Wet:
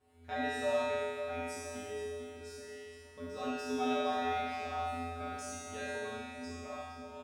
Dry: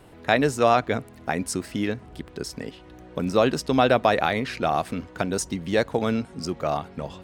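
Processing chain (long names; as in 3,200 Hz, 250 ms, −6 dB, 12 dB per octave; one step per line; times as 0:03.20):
tuned comb filter 84 Hz, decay 1.7 s, harmonics odd, mix 100%
on a send: repeating echo 465 ms, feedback 48%, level −11.5 dB
on the sum: comb and all-pass reverb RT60 0.48 s, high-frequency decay 0.4×, pre-delay 25 ms, DRR 1 dB
level +4 dB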